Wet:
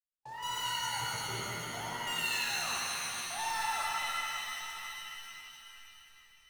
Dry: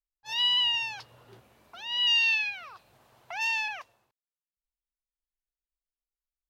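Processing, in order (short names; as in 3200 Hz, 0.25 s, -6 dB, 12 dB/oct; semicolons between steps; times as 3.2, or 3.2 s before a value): Wiener smoothing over 15 samples; LPF 2100 Hz 24 dB/oct; low-pass opened by the level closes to 1100 Hz, open at -23.5 dBFS; level quantiser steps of 19 dB; sample leveller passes 5; reverse; upward compressor, threshold -45 dBFS; reverse; shimmer reverb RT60 3.4 s, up +7 st, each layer -2 dB, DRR -4.5 dB; gain -6 dB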